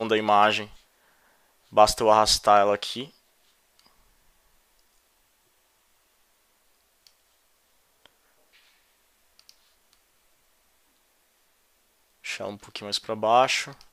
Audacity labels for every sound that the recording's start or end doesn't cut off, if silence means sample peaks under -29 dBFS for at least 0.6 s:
1.770000	3.040000	sound